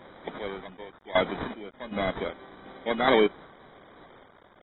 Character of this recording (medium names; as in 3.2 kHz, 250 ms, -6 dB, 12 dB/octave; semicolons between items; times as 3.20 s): aliases and images of a low sample rate 2.7 kHz, jitter 0%; random-step tremolo 2.6 Hz, depth 90%; a quantiser's noise floor 10-bit, dither none; AAC